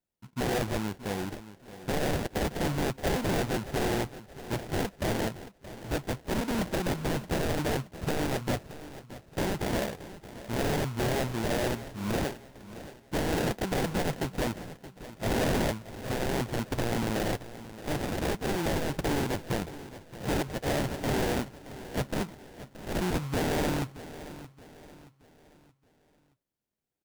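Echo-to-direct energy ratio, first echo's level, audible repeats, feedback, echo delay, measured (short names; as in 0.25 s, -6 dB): -14.0 dB, -15.0 dB, 3, 40%, 0.624 s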